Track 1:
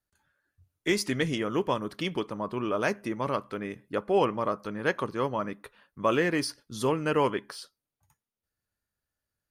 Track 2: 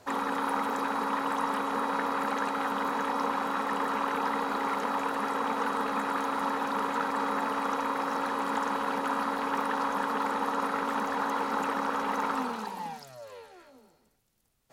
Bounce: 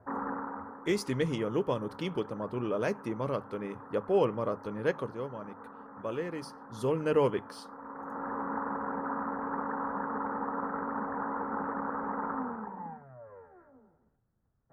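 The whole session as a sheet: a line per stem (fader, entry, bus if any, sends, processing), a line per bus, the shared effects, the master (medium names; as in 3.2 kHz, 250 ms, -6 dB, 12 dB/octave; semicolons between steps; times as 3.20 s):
4.93 s -8 dB -> 5.27 s -16 dB -> 6.51 s -16 dB -> 7.03 s -7 dB, 0.00 s, no send, peaking EQ 480 Hz +7.5 dB 0.69 oct; hum notches 50/100/150 Hz
-5.5 dB, 0.00 s, no send, steep low-pass 1.7 kHz 48 dB/octave; auto duck -14 dB, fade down 0.55 s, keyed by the first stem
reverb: none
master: peaking EQ 92 Hz +10 dB 2.4 oct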